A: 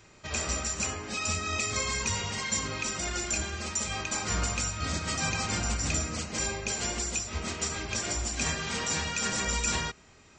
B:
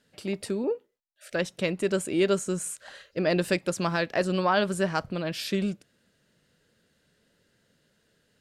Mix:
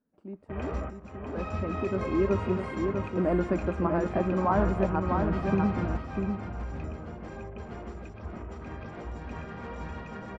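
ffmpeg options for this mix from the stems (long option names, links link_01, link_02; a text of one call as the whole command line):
ffmpeg -i stem1.wav -i stem2.wav -filter_complex "[0:a]afwtdn=0.0126,adelay=250,volume=2dB,asplit=2[link_01][link_02];[link_02]volume=-6.5dB[link_03];[1:a]equalizer=frequency=125:width_type=o:width=1:gain=-11,equalizer=frequency=250:width_type=o:width=1:gain=8,equalizer=frequency=500:width_type=o:width=1:gain=-6,equalizer=frequency=1000:width_type=o:width=1:gain=4,equalizer=frequency=2000:width_type=o:width=1:gain=-6,equalizer=frequency=4000:width_type=o:width=1:gain=-11,equalizer=frequency=8000:width_type=o:width=1:gain=4,dynaudnorm=framelen=420:gausssize=9:maxgain=11.5dB,volume=-10dB,asplit=3[link_04][link_05][link_06];[link_05]volume=-4.5dB[link_07];[link_06]apad=whole_len=468787[link_08];[link_01][link_08]sidechaingate=range=-10dB:threshold=-59dB:ratio=16:detection=peak[link_09];[link_03][link_07]amix=inputs=2:normalize=0,aecho=0:1:647:1[link_10];[link_09][link_04][link_10]amix=inputs=3:normalize=0,lowpass=1100" out.wav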